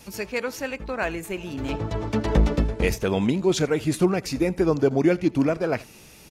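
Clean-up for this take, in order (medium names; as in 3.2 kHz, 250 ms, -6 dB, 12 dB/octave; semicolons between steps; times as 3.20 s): inverse comb 82 ms -23.5 dB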